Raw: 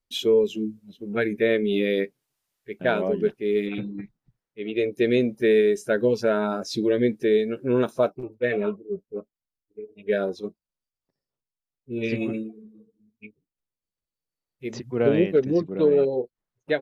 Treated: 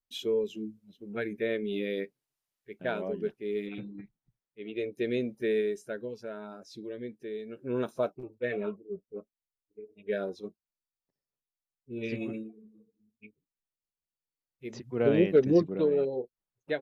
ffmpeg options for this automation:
-af "volume=8.5dB,afade=t=out:st=5.6:d=0.49:silence=0.375837,afade=t=in:st=7.37:d=0.51:silence=0.316228,afade=t=in:st=14.82:d=0.77:silence=0.398107,afade=t=out:st=15.59:d=0.28:silence=0.421697"

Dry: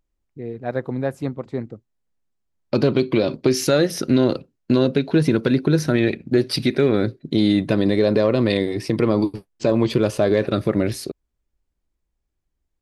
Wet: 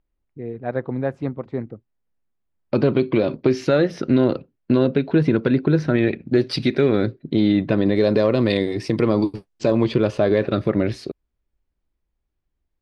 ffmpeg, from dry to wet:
-af "asetnsamples=n=441:p=0,asendcmd='6.26 lowpass f 5000;7.08 lowpass f 3000;7.96 lowpass f 7100;9.84 lowpass f 3900',lowpass=2.8k"

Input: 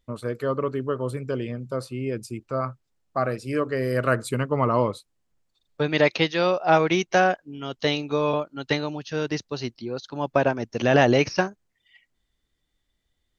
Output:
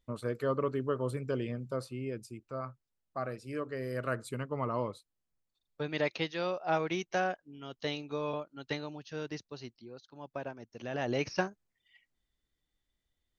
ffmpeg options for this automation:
-af "volume=5.5dB,afade=t=out:st=1.57:d=0.77:silence=0.473151,afade=t=out:st=9.21:d=0.86:silence=0.446684,afade=t=in:st=10.97:d=0.46:silence=0.281838"

